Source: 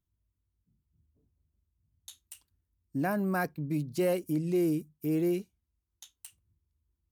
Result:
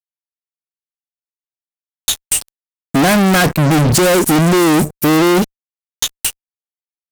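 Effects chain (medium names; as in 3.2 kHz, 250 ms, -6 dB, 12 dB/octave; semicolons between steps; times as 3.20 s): 2.21–4.94 s: peaking EQ 8.1 kHz +9.5 dB 0.57 oct; fuzz box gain 54 dB, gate -59 dBFS; trim +3 dB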